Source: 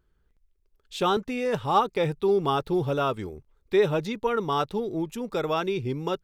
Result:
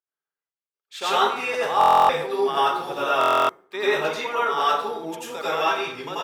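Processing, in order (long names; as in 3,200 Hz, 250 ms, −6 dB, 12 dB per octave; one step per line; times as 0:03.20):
noise gate with hold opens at −52 dBFS
pitch-shifted copies added −12 semitones −11 dB, −7 semitones −16 dB
high-pass filter 710 Hz 12 dB per octave
dense smooth reverb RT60 0.61 s, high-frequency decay 0.7×, pre-delay 75 ms, DRR −9.5 dB
buffer that repeats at 0:01.79/0:03.19, samples 1,024, times 12
level −1.5 dB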